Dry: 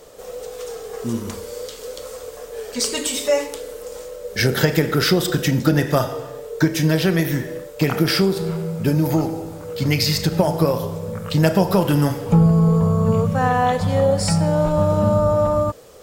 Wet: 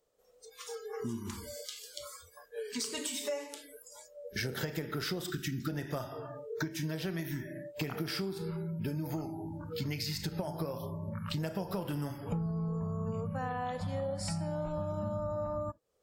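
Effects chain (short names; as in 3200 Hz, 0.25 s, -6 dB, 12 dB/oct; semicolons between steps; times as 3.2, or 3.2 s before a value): spectral noise reduction 28 dB; compressor 4:1, threshold -31 dBFS, peak gain reduction 17 dB; spectral gain 5.3–5.68, 440–1100 Hz -30 dB; gain -4.5 dB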